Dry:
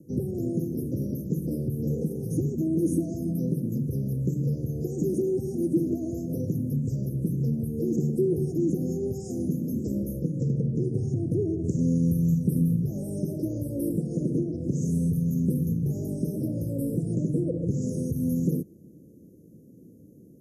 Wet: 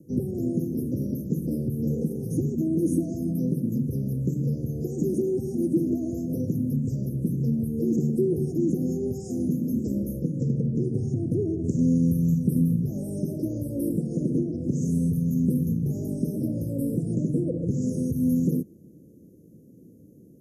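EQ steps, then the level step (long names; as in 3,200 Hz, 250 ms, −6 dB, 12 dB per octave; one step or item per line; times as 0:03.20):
notch filter 3,900 Hz, Q 24
dynamic equaliser 240 Hz, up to +6 dB, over −43 dBFS, Q 5.1
0.0 dB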